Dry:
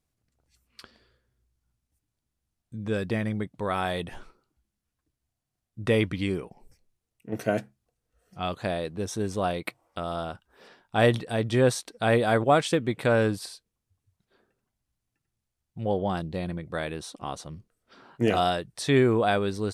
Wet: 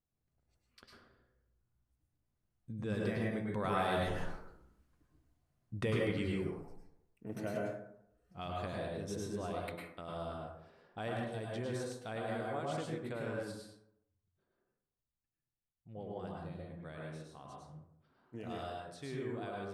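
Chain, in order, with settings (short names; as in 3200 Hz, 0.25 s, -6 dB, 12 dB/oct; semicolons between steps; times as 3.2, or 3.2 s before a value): Doppler pass-by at 4.59, 5 m/s, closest 3.3 m; compressor 2:1, threshold -49 dBFS, peak gain reduction 13 dB; reverb RT60 0.75 s, pre-delay 94 ms, DRR -2.5 dB; mismatched tape noise reduction decoder only; gain +6 dB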